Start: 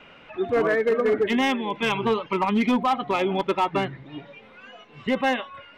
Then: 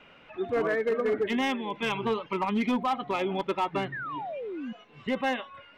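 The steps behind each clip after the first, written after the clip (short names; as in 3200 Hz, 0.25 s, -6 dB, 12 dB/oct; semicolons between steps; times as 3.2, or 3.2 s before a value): painted sound fall, 3.92–4.73, 210–1900 Hz -30 dBFS; gain -5.5 dB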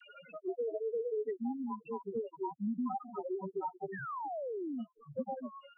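loudest bins only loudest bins 2; dispersion lows, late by 0.134 s, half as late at 490 Hz; three-band squash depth 70%; gain -6 dB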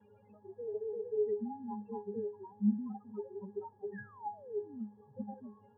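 band noise 90–990 Hz -62 dBFS; octave resonator G#, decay 0.25 s; gain +11 dB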